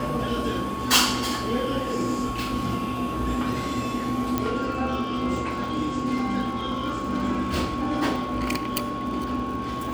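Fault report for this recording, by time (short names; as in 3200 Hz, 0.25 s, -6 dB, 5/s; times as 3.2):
crackle 79/s -35 dBFS
tone 1100 Hz -31 dBFS
4.38 pop -10 dBFS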